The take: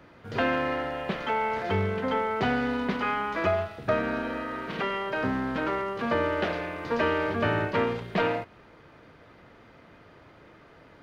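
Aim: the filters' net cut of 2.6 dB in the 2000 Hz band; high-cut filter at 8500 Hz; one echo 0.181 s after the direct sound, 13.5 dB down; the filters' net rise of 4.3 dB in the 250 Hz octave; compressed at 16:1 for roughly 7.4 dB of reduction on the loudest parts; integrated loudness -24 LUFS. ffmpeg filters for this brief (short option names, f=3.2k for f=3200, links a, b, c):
-af "lowpass=8.5k,equalizer=f=250:t=o:g=5,equalizer=f=2k:t=o:g=-3.5,acompressor=threshold=-27dB:ratio=16,aecho=1:1:181:0.211,volume=8dB"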